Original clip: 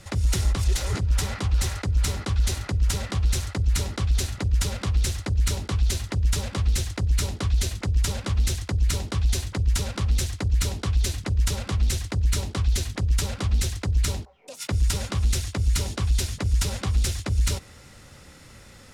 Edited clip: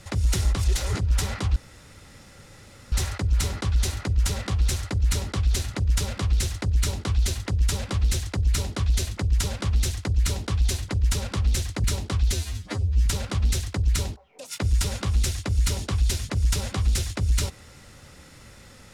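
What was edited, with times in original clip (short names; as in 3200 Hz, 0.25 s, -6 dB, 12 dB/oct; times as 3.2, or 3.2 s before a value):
1.56 insert room tone 1.36 s
10.48–12.29 cut
12.79–13.15 stretch 2×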